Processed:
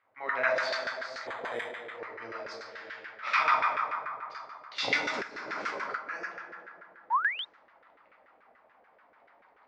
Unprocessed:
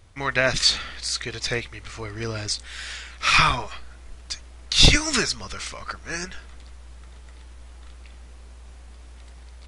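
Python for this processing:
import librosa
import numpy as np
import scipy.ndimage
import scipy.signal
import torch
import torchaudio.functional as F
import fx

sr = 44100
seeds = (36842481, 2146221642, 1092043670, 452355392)

y = fx.cabinet(x, sr, low_hz=160.0, low_slope=12, high_hz=7200.0, hz=(160.0, 380.0, 2100.0, 4900.0), db=(-4, -5, 5, 4))
y = fx.rev_plate(y, sr, seeds[0], rt60_s=2.9, hf_ratio=0.45, predelay_ms=0, drr_db=-4.5)
y = fx.resample_bad(y, sr, factor=8, down='none', up='hold', at=(1.27, 1.99))
y = fx.over_compress(y, sr, threshold_db=-26.0, ratio=-1.0, at=(5.21, 5.95), fade=0.02)
y = fx.spec_paint(y, sr, seeds[1], shape='rise', start_s=7.1, length_s=0.35, low_hz=840.0, high_hz=3800.0, level_db=-17.0)
y = fx.env_lowpass(y, sr, base_hz=2400.0, full_db=-15.0)
y = fx.low_shelf(y, sr, hz=350.0, db=-3.0)
y = fx.filter_lfo_bandpass(y, sr, shape='saw_down', hz=6.9, low_hz=480.0, high_hz=1600.0, q=2.0)
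y = y * 10.0 ** (-5.0 / 20.0)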